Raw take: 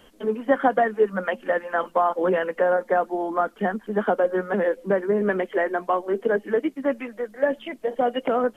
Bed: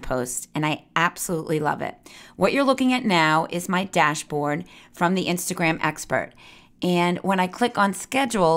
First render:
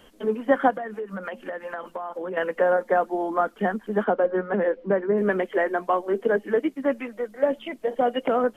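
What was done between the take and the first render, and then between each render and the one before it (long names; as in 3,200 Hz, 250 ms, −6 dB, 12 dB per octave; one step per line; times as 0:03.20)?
0:00.70–0:02.37: downward compressor 10 to 1, threshold −28 dBFS
0:04.04–0:05.18: high-frequency loss of the air 260 metres
0:07.08–0:07.76: notch filter 1,700 Hz, Q 10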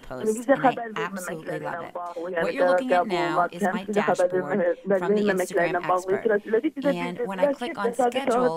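mix in bed −10.5 dB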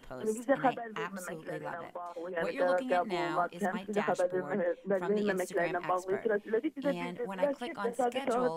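level −8.5 dB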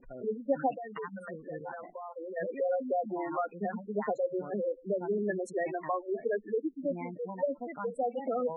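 notch filter 3,200 Hz, Q 5.7
gate on every frequency bin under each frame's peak −10 dB strong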